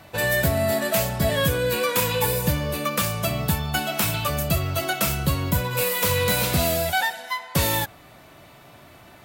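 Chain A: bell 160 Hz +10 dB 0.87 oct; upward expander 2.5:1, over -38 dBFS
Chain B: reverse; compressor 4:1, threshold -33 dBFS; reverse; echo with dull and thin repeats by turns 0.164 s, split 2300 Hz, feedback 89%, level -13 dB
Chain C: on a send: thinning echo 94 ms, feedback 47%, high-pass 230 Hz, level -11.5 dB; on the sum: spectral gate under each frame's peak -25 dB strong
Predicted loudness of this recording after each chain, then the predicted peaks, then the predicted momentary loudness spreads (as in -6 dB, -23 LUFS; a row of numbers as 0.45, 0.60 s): -27.0, -33.5, -23.0 LUFS; -3.5, -19.5, -7.0 dBFS; 14, 10, 4 LU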